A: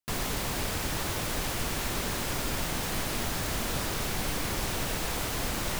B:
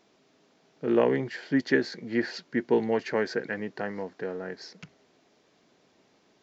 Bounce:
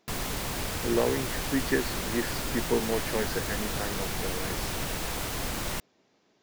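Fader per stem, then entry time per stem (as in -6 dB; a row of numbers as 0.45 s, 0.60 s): -1.0 dB, -3.5 dB; 0.00 s, 0.00 s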